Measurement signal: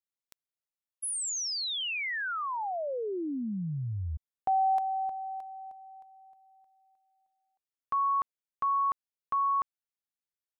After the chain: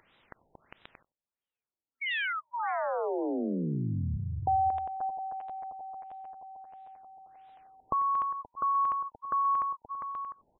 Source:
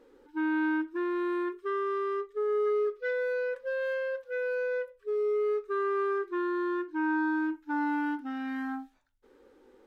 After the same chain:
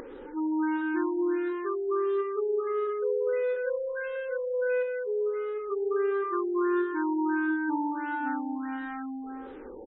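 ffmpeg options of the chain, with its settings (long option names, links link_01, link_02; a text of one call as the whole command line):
ffmpeg -i in.wav -filter_complex "[0:a]asplit=2[link_01][link_02];[link_02]aecho=0:1:230|402.5|531.9|628.9|701.7:0.631|0.398|0.251|0.158|0.1[link_03];[link_01][link_03]amix=inputs=2:normalize=0,acompressor=mode=upward:threshold=-32dB:ratio=2.5:attack=8.9:release=44:knee=2.83:detection=peak,asplit=2[link_04][link_05];[link_05]adelay=93.29,volume=-22dB,highshelf=frequency=4000:gain=-2.1[link_06];[link_04][link_06]amix=inputs=2:normalize=0,afftfilt=real='re*lt(b*sr/1024,930*pow(4000/930,0.5+0.5*sin(2*PI*1.5*pts/sr)))':imag='im*lt(b*sr/1024,930*pow(4000/930,0.5+0.5*sin(2*PI*1.5*pts/sr)))':win_size=1024:overlap=0.75" out.wav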